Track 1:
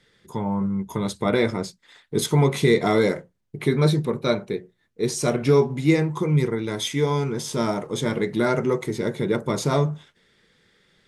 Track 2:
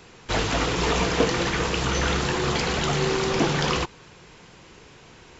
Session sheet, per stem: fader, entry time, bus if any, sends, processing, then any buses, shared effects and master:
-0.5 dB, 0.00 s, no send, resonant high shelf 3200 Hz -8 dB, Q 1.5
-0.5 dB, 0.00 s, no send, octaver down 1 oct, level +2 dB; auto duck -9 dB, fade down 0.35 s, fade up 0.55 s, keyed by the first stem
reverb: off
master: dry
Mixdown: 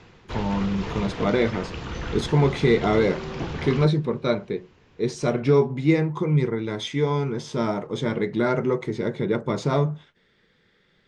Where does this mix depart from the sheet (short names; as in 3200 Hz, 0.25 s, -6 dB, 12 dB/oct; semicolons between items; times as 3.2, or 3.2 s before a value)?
stem 1: missing resonant high shelf 3200 Hz -8 dB, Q 1.5; master: extra air absorption 130 m